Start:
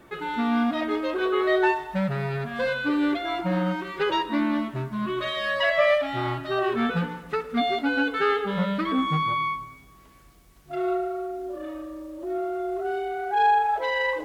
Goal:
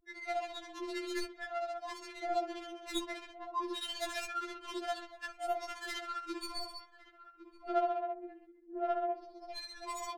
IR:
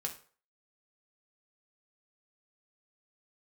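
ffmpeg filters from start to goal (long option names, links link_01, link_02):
-filter_complex "[0:a]aemphasis=mode=production:type=75fm,atempo=1.4,equalizer=frequency=125:width_type=o:width=1:gain=10,equalizer=frequency=500:width_type=o:width=1:gain=-8,equalizer=frequency=1000:width_type=o:width=1:gain=6,afftdn=noise_reduction=14:noise_floor=-38,flanger=delay=15.5:depth=2.2:speed=0.88,tremolo=f=15:d=0.72,adynamicsmooth=sensitivity=4.5:basefreq=520,aeval=exprs='val(0)+0.00224*(sin(2*PI*50*n/s)+sin(2*PI*2*50*n/s)/2+sin(2*PI*3*50*n/s)/3+sin(2*PI*4*50*n/s)/4+sin(2*PI*5*50*n/s)/5)':channel_layout=same,asplit=2[link_01][link_02];[link_02]adelay=1108,volume=-13dB,highshelf=frequency=4000:gain=-24.9[link_03];[link_01][link_03]amix=inputs=2:normalize=0,afftfilt=real='re*4*eq(mod(b,16),0)':imag='im*4*eq(mod(b,16),0)':win_size=2048:overlap=0.75"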